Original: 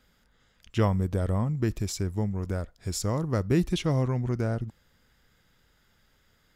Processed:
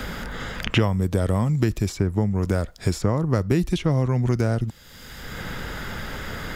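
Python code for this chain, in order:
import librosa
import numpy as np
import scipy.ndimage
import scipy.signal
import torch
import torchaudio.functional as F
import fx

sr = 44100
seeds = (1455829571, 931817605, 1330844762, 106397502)

y = fx.band_squash(x, sr, depth_pct=100)
y = y * 10.0 ** (5.5 / 20.0)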